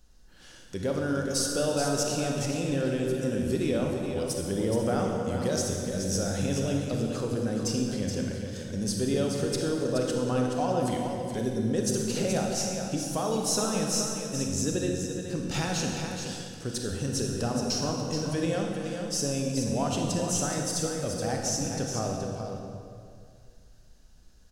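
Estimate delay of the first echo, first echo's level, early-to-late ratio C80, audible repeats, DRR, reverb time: 424 ms, -7.0 dB, 1.5 dB, 1, -0.5 dB, 2.2 s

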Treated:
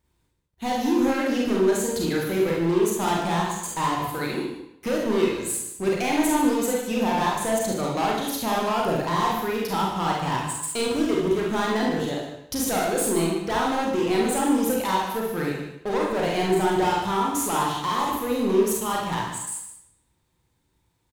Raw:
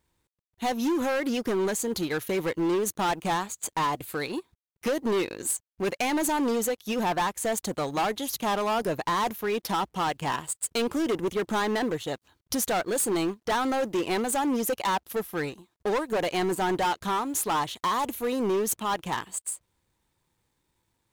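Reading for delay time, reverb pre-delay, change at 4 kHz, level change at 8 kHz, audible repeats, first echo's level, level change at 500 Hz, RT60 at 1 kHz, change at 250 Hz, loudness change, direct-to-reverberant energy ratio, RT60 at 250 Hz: 150 ms, 34 ms, +2.5 dB, +2.0 dB, 1, -10.5 dB, +4.0 dB, 0.80 s, +5.0 dB, +3.5 dB, -3.5 dB, 0.75 s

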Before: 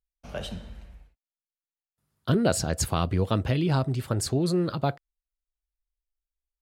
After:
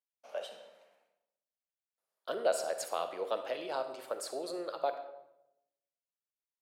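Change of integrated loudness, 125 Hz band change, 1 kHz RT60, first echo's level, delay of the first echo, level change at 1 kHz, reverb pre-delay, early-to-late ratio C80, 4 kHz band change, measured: -10.0 dB, under -40 dB, 0.80 s, no echo, no echo, -5.0 dB, 40 ms, 11.5 dB, -9.5 dB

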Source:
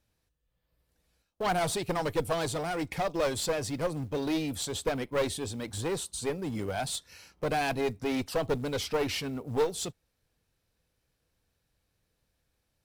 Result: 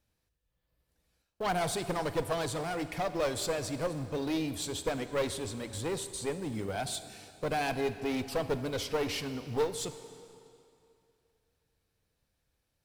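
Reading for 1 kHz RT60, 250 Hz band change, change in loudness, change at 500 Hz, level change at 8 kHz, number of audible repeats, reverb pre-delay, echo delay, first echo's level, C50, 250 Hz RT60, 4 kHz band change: 2.7 s, -2.0 dB, -2.0 dB, -2.0 dB, -2.0 dB, no echo, 30 ms, no echo, no echo, 11.5 dB, 2.5 s, -2.0 dB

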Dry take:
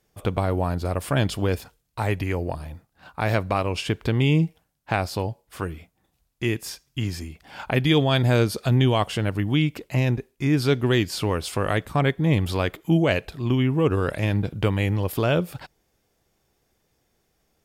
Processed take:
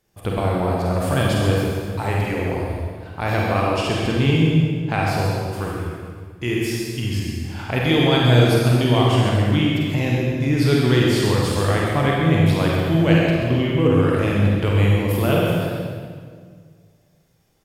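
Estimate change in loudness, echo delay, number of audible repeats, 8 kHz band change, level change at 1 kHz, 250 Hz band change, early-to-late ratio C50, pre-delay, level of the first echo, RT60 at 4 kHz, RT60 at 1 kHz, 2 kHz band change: +4.5 dB, 50 ms, 2, +4.0 dB, +4.5 dB, +5.0 dB, -3.0 dB, 37 ms, -6.0 dB, 1.5 s, 1.7 s, +4.5 dB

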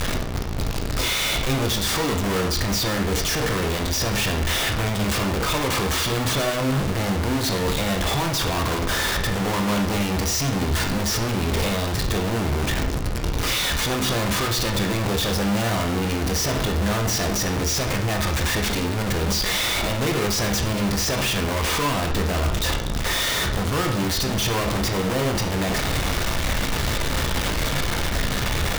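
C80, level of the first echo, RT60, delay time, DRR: 11.5 dB, no echo, 0.65 s, no echo, 3.0 dB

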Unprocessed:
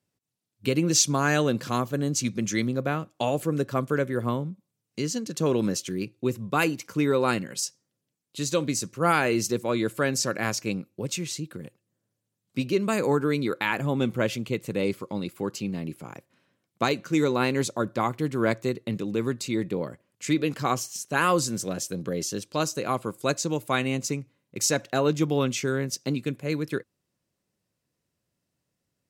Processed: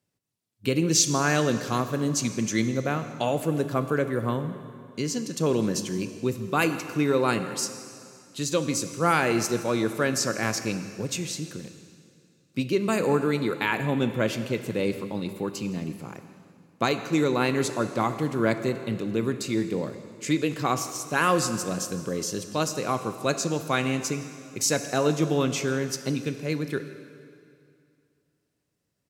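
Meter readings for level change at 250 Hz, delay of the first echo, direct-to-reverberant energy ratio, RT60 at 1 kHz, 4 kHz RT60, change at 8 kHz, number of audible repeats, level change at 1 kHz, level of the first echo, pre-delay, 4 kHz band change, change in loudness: +0.5 dB, 165 ms, 9.0 dB, 2.4 s, 2.2 s, +0.5 dB, 1, +0.5 dB, -21.0 dB, 6 ms, +0.5 dB, +0.5 dB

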